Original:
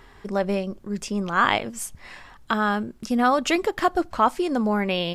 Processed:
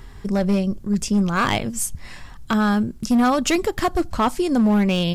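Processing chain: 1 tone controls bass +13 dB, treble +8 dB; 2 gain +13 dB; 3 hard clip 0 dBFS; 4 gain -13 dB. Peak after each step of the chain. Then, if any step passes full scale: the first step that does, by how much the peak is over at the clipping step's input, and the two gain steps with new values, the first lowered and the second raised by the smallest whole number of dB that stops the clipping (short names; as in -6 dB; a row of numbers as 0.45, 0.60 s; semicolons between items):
-3.5, +9.5, 0.0, -13.0 dBFS; step 2, 9.5 dB; step 2 +3 dB, step 4 -3 dB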